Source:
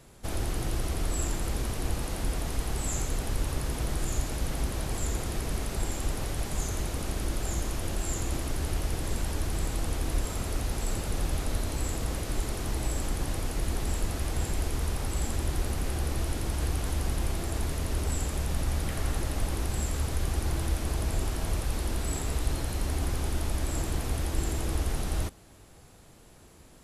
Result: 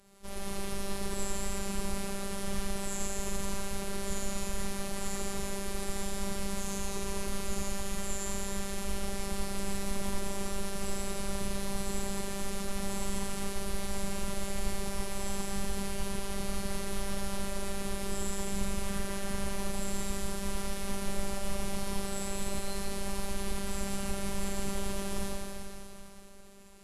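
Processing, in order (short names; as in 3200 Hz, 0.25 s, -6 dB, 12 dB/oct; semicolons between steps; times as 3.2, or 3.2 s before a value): Schroeder reverb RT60 3.1 s, DRR -5.5 dB; robotiser 234 Hz; formant-preserving pitch shift -3 st; gain -5.5 dB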